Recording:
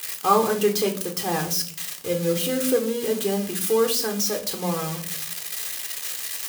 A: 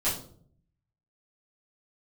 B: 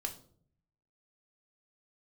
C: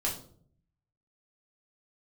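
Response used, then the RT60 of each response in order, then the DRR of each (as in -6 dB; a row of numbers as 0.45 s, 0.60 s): B; 0.55 s, 0.55 s, 0.55 s; -11.5 dB, 4.0 dB, -3.5 dB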